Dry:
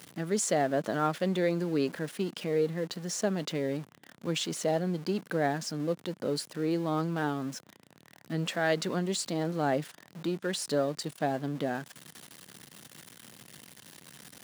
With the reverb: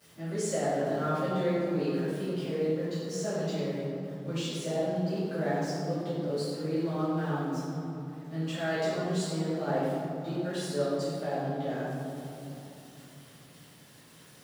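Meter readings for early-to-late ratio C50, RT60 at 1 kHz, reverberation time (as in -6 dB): -3.5 dB, 2.8 s, 3.0 s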